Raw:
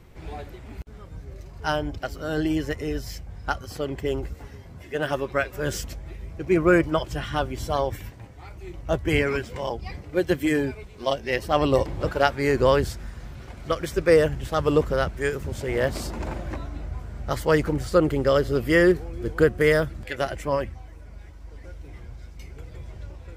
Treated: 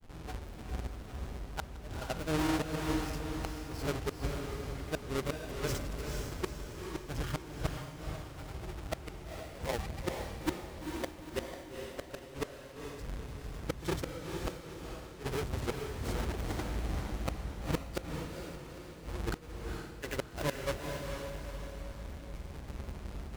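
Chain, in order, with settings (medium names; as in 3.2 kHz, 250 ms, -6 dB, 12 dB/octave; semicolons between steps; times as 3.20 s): square wave that keeps the level; granulator 100 ms, grains 20 per s; inverted gate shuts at -15 dBFS, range -32 dB; on a send: echo that smears into a reverb 461 ms, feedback 48%, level -3.5 dB; on the sum: trim -8.5 dB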